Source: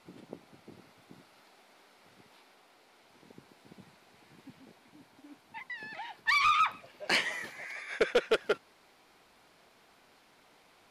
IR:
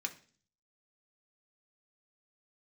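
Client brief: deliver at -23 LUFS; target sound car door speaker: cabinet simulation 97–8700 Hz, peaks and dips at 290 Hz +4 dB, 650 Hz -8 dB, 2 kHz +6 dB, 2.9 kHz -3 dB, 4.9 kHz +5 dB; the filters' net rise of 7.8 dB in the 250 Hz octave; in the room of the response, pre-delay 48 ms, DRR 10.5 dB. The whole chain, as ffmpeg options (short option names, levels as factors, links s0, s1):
-filter_complex "[0:a]equalizer=f=250:t=o:g=8.5,asplit=2[s0][s1];[1:a]atrim=start_sample=2205,adelay=48[s2];[s1][s2]afir=irnorm=-1:irlink=0,volume=0.282[s3];[s0][s3]amix=inputs=2:normalize=0,highpass=97,equalizer=f=290:t=q:w=4:g=4,equalizer=f=650:t=q:w=4:g=-8,equalizer=f=2000:t=q:w=4:g=6,equalizer=f=2900:t=q:w=4:g=-3,equalizer=f=4900:t=q:w=4:g=5,lowpass=f=8700:w=0.5412,lowpass=f=8700:w=1.3066,volume=1.88"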